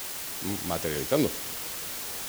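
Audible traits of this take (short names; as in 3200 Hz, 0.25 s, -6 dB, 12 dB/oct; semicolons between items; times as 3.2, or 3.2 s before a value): tremolo saw up 3.6 Hz, depth 45%; a quantiser's noise floor 6-bit, dither triangular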